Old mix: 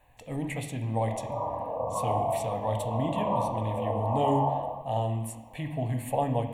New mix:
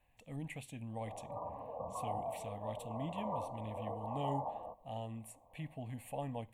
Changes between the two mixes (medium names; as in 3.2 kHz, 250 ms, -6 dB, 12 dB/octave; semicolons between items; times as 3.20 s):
speech -11.0 dB; reverb: off